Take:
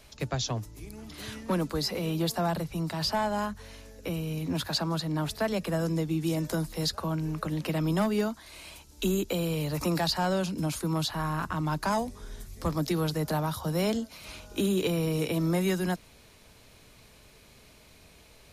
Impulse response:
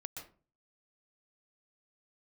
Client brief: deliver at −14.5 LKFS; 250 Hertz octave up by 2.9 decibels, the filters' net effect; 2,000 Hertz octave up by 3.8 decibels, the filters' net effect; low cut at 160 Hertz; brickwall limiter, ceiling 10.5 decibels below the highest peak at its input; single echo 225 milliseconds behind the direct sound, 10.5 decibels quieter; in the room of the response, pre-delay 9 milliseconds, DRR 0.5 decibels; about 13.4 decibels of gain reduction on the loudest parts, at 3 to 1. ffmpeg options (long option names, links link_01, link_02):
-filter_complex "[0:a]highpass=160,equalizer=frequency=250:width_type=o:gain=6.5,equalizer=frequency=2000:width_type=o:gain=5,acompressor=threshold=-39dB:ratio=3,alimiter=level_in=8dB:limit=-24dB:level=0:latency=1,volume=-8dB,aecho=1:1:225:0.299,asplit=2[link_01][link_02];[1:a]atrim=start_sample=2205,adelay=9[link_03];[link_02][link_03]afir=irnorm=-1:irlink=0,volume=2dB[link_04];[link_01][link_04]amix=inputs=2:normalize=0,volume=24dB"